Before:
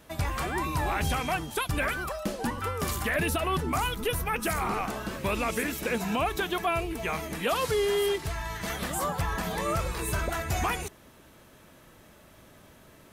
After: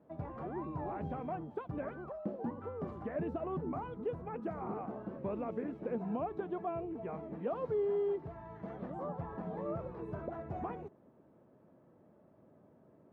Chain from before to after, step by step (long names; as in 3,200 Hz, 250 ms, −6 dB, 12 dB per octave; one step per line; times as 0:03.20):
flat-topped band-pass 310 Hz, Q 0.51
level −6 dB